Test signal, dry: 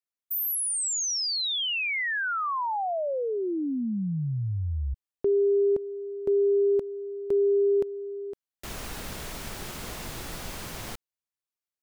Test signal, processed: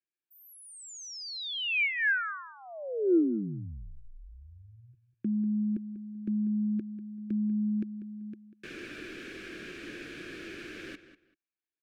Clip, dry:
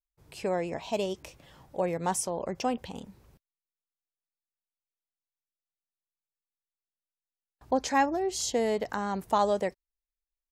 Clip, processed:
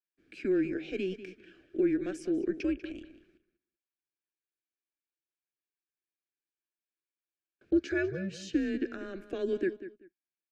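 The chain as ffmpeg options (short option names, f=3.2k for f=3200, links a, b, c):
-filter_complex "[0:a]equalizer=f=4.7k:t=o:w=2.6:g=4.5,asplit=2[a][b];[b]alimiter=limit=-22.5dB:level=0:latency=1:release=107,volume=2dB[c];[a][c]amix=inputs=2:normalize=0,asplit=3[d][e][f];[d]bandpass=f=530:t=q:w=8,volume=0dB[g];[e]bandpass=f=1.84k:t=q:w=8,volume=-6dB[h];[f]bandpass=f=2.48k:t=q:w=8,volume=-9dB[i];[g][h][i]amix=inputs=3:normalize=0,acontrast=56,afreqshift=-190,asplit=2[j][k];[k]adelay=193,lowpass=f=4.2k:p=1,volume=-13dB,asplit=2[l][m];[m]adelay=193,lowpass=f=4.2k:p=1,volume=0.21[n];[l][n]amix=inputs=2:normalize=0[o];[j][o]amix=inputs=2:normalize=0,volume=-5.5dB"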